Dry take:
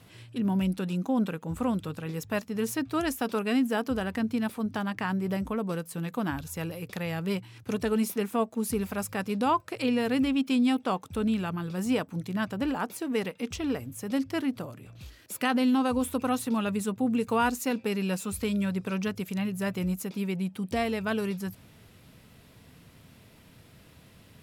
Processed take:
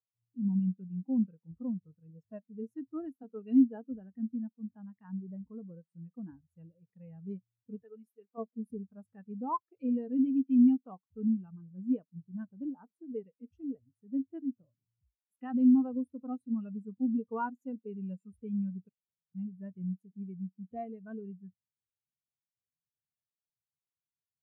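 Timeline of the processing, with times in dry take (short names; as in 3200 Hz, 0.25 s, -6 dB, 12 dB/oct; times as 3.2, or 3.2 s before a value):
3.23–5.46 three-band expander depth 40%
7.83–8.38 HPF 720 Hz 6 dB/oct
18.89–19.35 room tone
whole clip: spectral expander 2.5:1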